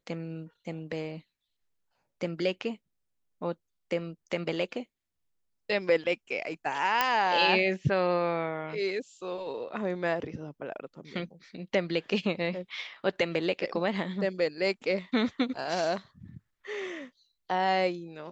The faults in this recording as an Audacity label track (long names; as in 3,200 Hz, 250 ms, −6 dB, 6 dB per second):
7.010000	7.010000	click −9 dBFS